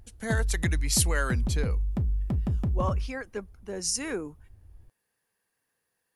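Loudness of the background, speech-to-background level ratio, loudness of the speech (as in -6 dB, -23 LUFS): -30.0 LUFS, -1.0 dB, -31.0 LUFS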